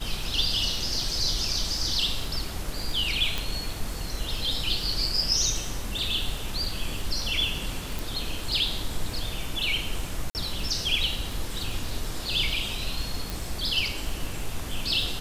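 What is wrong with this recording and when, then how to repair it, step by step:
crackle 31/s -32 dBFS
3.38 pop
7.99 pop
10.3–10.35 gap 49 ms
13.3 pop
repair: de-click; interpolate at 10.3, 49 ms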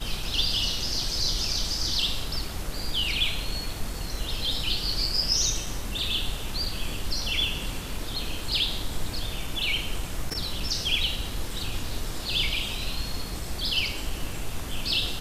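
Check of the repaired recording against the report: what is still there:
none

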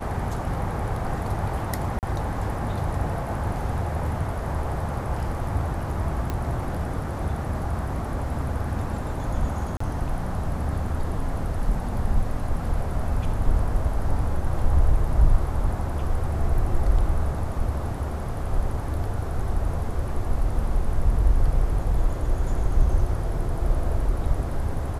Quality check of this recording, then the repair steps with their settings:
1.99–2.03 gap 38 ms
6.3 pop -15 dBFS
9.77–9.8 gap 34 ms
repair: de-click; interpolate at 1.99, 38 ms; interpolate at 9.77, 34 ms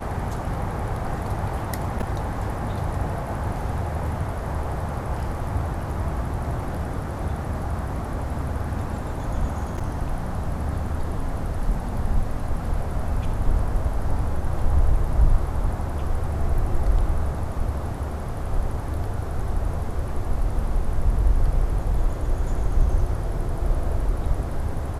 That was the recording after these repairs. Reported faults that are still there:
none

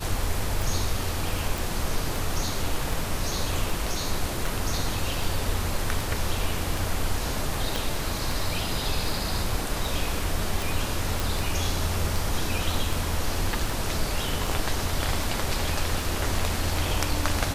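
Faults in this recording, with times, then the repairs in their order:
tick 78 rpm
1.58 pop
7.76 pop
11.2 pop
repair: de-click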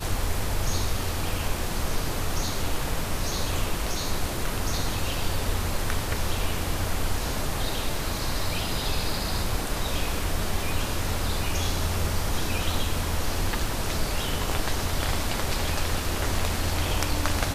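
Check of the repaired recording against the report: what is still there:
7.76 pop

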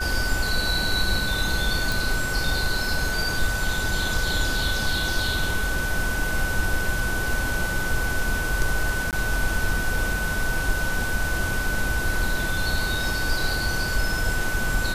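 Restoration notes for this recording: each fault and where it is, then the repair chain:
tone 1500 Hz -27 dBFS
1.92 pop
9.11–9.13 gap 18 ms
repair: de-click; notch 1500 Hz, Q 30; interpolate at 9.11, 18 ms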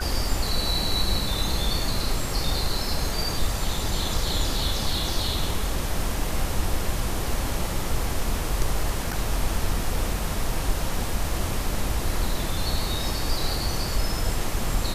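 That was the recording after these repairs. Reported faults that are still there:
none

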